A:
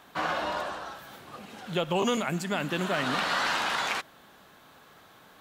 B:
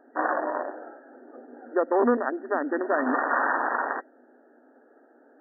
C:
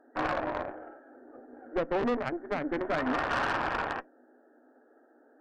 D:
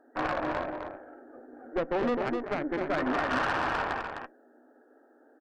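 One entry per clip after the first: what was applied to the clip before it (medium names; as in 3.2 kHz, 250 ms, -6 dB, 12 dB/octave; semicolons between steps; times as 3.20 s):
local Wiener filter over 41 samples; FFT band-pass 230–1900 Hz; trim +7 dB
valve stage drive 23 dB, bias 0.75; on a send at -17.5 dB: reverberation RT60 0.15 s, pre-delay 3 ms
delay 257 ms -5.5 dB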